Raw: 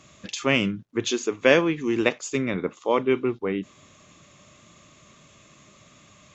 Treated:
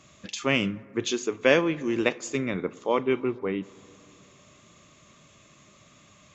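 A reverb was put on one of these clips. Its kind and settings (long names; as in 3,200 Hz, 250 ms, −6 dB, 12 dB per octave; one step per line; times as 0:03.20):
dense smooth reverb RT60 2.7 s, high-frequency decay 0.25×, DRR 19.5 dB
level −2.5 dB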